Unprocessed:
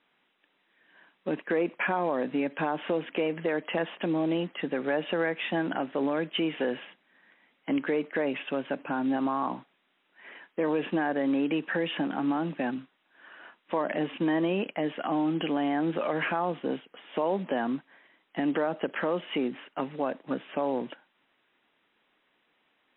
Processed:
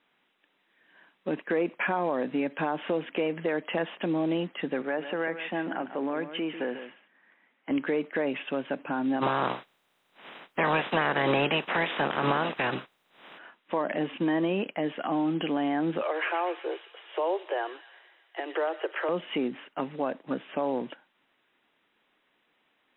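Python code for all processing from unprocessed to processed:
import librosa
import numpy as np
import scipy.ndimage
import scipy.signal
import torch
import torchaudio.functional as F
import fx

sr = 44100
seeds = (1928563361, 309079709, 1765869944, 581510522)

y = fx.chain(x, sr, fx.bandpass_edges(low_hz=210.0, high_hz=2400.0),
    fx.peak_eq(hz=460.0, db=-3.0, octaves=1.8),
    fx.echo_single(ms=146, db=-11.0), at=(4.82, 7.71))
y = fx.spec_clip(y, sr, under_db=24, at=(9.21, 13.37), fade=0.02)
y = fx.peak_eq(y, sr, hz=750.0, db=3.5, octaves=2.2, at=(9.21, 13.37), fade=0.02)
y = fx.chain(y, sr, fx.steep_highpass(hz=330.0, slope=96),
    fx.echo_wet_highpass(ms=122, feedback_pct=62, hz=2600.0, wet_db=-5.0), at=(16.02, 19.09))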